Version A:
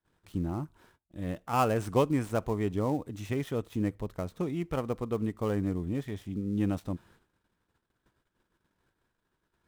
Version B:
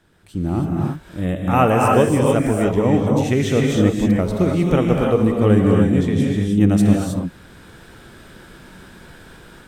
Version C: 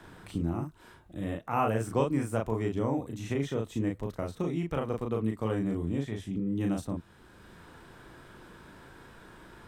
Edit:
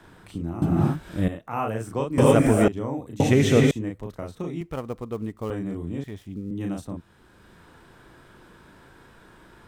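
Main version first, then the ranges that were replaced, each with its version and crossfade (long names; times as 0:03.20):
C
0:00.62–0:01.28: punch in from B
0:02.18–0:02.68: punch in from B
0:03.20–0:03.71: punch in from B
0:04.61–0:05.50: punch in from A
0:06.04–0:06.51: punch in from A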